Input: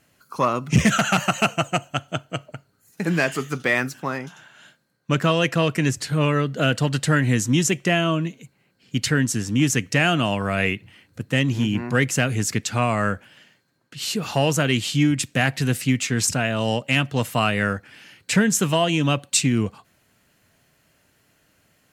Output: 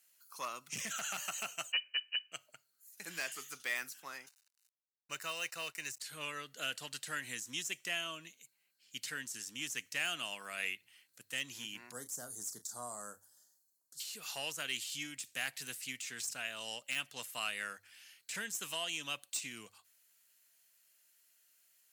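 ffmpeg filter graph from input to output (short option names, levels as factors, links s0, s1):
-filter_complex "[0:a]asettb=1/sr,asplit=3[s0][s1][s2];[s0]atrim=end=1.724[s3];[s1]atrim=start=1.72:end=2.32,asetpts=PTS-STARTPTS,afade=t=in:d=0.004:c=qsin,afade=t=out:st=0.596:d=0.004:c=qsin,lowshelf=f=140:g=9,lowpass=f=2600:t=q:w=0.5098,lowpass=f=2600:t=q:w=0.6013,lowpass=f=2600:t=q:w=0.9,lowpass=f=2600:t=q:w=2.563,afreqshift=-3100[s4];[s2]atrim=start=2.316[s5];[s3][s4]acrossfade=d=0.004:c1=hsin:c2=qsin[s6];[s6][s5]acrossfade=d=0.004:c1=qsin:c2=hsin,asettb=1/sr,asplit=3[s7][s8][s9];[s7]atrim=end=4.264[s10];[s8]atrim=start=4.26:end=6,asetpts=PTS-STARTPTS,afade=t=in:d=0.004:c=qsin,afade=t=out:st=1.736:d=0.004:c=qsin,aeval=exprs='sgn(val(0))*max(abs(val(0))-0.0075,0)':c=same,asuperstop=centerf=3300:order=8:qfactor=7.3,equalizer=f=230:w=1.7:g=-8[s11];[s9]atrim=start=5.996[s12];[s10][s11]acrossfade=d=0.004:c1=hsin:c2=qsin[s13];[s13][s12]acrossfade=d=0.004:c1=qsin:c2=hsin,asettb=1/sr,asplit=3[s14][s15][s16];[s14]atrim=end=11.924[s17];[s15]atrim=start=11.92:end=14,asetpts=PTS-STARTPTS,afade=t=in:d=0.004:c=qsin,afade=t=out:st=2.076:d=0.004:c=qsin,asuperstop=centerf=2500:order=4:qfactor=0.52,highshelf=f=3900:g=4.5,asplit=2[s18][s19];[s19]adelay=33,volume=0.282[s20];[s18][s20]amix=inputs=2:normalize=0,atrim=end_sample=91728[s21];[s16]atrim=start=13.996[s22];[s17][s21]acrossfade=d=0.004:c1=hsin:c2=qsin[s23];[s23][s22]acrossfade=d=0.004:c1=qsin:c2=hsin,aderivative,bandreject=f=50:t=h:w=6,bandreject=f=100:t=h:w=6,deesser=0.7,volume=0.668"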